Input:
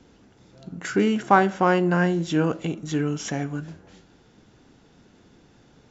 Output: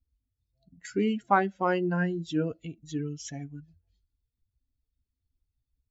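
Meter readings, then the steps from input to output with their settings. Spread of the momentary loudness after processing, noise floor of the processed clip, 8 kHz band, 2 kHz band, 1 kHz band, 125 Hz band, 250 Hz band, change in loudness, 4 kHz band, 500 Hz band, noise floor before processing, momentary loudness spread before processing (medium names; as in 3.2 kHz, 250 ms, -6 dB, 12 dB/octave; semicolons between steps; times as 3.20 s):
17 LU, under -85 dBFS, no reading, -7.0 dB, -6.5 dB, -7.5 dB, -7.0 dB, -6.5 dB, -8.0 dB, -7.0 dB, -56 dBFS, 15 LU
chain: expander on every frequency bin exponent 2; trim -4 dB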